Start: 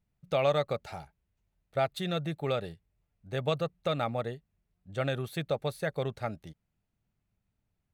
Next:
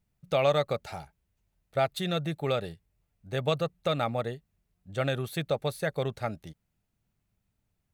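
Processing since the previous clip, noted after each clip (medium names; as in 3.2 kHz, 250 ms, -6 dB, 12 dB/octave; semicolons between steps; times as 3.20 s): treble shelf 5.1 kHz +4 dB; trim +2 dB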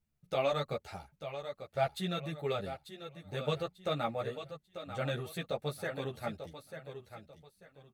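feedback delay 892 ms, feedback 30%, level -10 dB; three-phase chorus; trim -3 dB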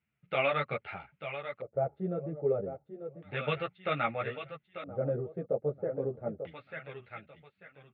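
LFO low-pass square 0.31 Hz 490–2700 Hz; cabinet simulation 110–3500 Hz, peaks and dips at 120 Hz +4 dB, 1.4 kHz +7 dB, 2.1 kHz +6 dB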